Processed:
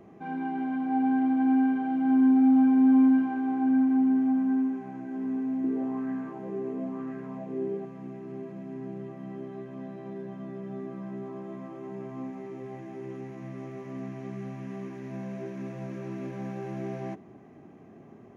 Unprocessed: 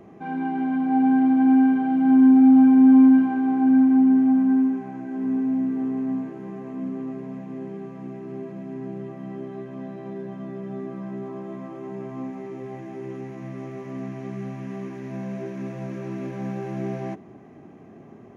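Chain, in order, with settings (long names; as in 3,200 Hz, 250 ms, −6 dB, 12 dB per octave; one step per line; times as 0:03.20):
dynamic equaliser 170 Hz, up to −5 dB, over −31 dBFS, Q 1.3
0:05.64–0:07.85: auto-filter bell 1 Hz 370–1,600 Hz +12 dB
level −4.5 dB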